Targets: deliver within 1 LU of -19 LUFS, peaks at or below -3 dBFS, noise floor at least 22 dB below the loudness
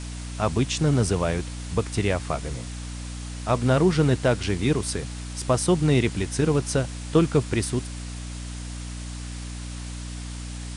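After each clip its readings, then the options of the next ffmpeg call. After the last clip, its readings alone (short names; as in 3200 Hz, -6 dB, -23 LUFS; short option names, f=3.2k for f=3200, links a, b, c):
hum 60 Hz; harmonics up to 300 Hz; hum level -32 dBFS; noise floor -35 dBFS; noise floor target -48 dBFS; loudness -25.5 LUFS; peak -8.5 dBFS; loudness target -19.0 LUFS
-> -af "bandreject=f=60:t=h:w=4,bandreject=f=120:t=h:w=4,bandreject=f=180:t=h:w=4,bandreject=f=240:t=h:w=4,bandreject=f=300:t=h:w=4"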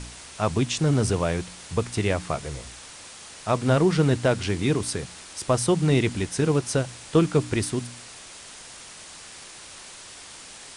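hum none; noise floor -44 dBFS; noise floor target -47 dBFS
-> -af "afftdn=nr=6:nf=-44"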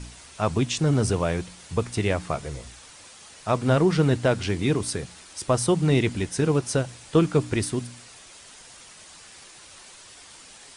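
noise floor -48 dBFS; loudness -24.5 LUFS; peak -9.0 dBFS; loudness target -19.0 LUFS
-> -af "volume=5.5dB"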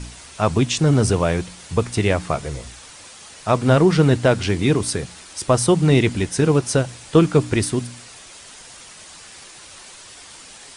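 loudness -19.0 LUFS; peak -3.5 dBFS; noise floor -42 dBFS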